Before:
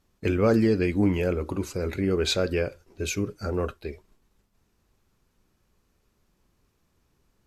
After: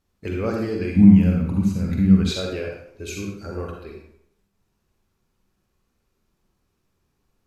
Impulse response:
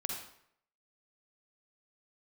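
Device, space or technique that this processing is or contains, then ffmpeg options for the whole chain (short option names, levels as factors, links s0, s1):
bathroom: -filter_complex "[1:a]atrim=start_sample=2205[s0];[0:a][s0]afir=irnorm=-1:irlink=0,asettb=1/sr,asplit=3[s1][s2][s3];[s1]atrim=end=0.964[s4];[s2]atrim=start=0.96:end=2.31,asetpts=PTS-STARTPTS,afade=t=in:d=0.004:c=qsin,afade=t=out:st=1.346:d=0.004:c=qsin,lowshelf=f=280:t=q:w=3:g=10[s5];[s3]atrim=start=2.306[s6];[s4][s5]acrossfade=d=0.004:c1=hsin:c2=qsin[s7];[s7][s6]acrossfade=d=0.004:c1=qsin:c2=hsin,volume=0.631"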